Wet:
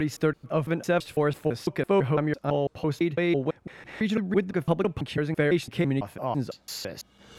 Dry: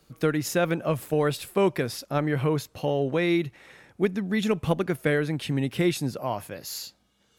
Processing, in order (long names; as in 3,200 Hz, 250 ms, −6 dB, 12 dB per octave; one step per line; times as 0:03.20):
slices reordered back to front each 167 ms, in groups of 3
low-pass filter 3,100 Hz 6 dB per octave
upward compression, threshold −28 dBFS